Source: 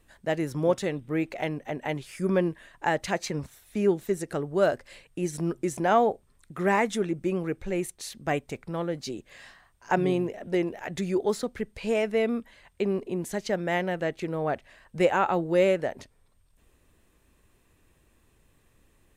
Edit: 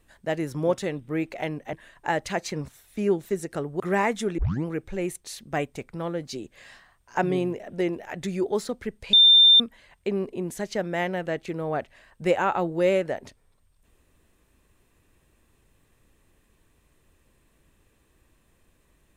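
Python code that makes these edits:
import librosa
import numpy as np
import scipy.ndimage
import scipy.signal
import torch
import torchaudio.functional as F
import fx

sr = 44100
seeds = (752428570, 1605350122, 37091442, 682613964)

y = fx.edit(x, sr, fx.cut(start_s=1.73, length_s=0.78),
    fx.cut(start_s=4.58, length_s=1.96),
    fx.tape_start(start_s=7.12, length_s=0.28),
    fx.bleep(start_s=11.87, length_s=0.47, hz=3590.0, db=-11.0), tone=tone)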